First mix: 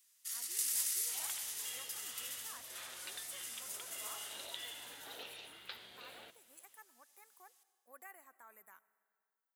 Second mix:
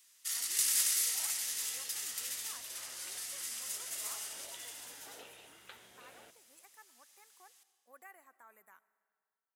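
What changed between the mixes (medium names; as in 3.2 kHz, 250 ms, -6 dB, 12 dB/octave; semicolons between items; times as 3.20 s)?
first sound +9.0 dB; second sound: add distance through air 310 m; master: add treble shelf 10 kHz -8.5 dB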